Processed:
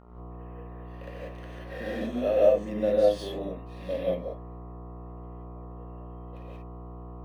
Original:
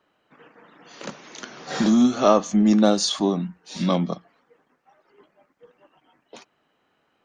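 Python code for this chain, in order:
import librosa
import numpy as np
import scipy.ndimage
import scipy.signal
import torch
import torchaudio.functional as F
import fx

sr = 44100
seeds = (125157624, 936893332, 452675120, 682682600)

y = fx.vowel_filter(x, sr, vowel='e')
y = fx.dmg_buzz(y, sr, base_hz=60.0, harmonics=23, level_db=-51.0, tilt_db=-4, odd_only=False)
y = fx.rev_gated(y, sr, seeds[0], gate_ms=210, shape='rising', drr_db=-6.0)
y = np.interp(np.arange(len(y)), np.arange(len(y))[::3], y[::3])
y = F.gain(torch.from_numpy(y), -2.0).numpy()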